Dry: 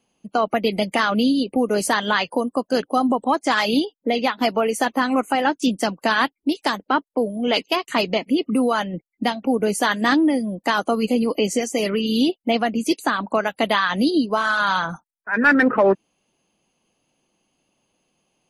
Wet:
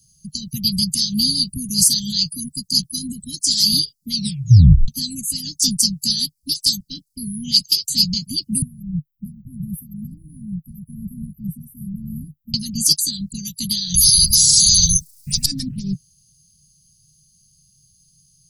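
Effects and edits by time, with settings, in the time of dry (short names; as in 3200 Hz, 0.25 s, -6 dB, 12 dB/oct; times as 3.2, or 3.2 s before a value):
4.13 tape stop 0.75 s
8.62–12.54 inverse Chebyshev band-stop 590–7200 Hz, stop band 60 dB
13.94–15.46 spectral compressor 10:1
whole clip: Chebyshev band-stop 150–4700 Hz, order 4; dynamic EQ 2700 Hz, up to -4 dB, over -56 dBFS, Q 1.6; maximiser +21 dB; gain -1 dB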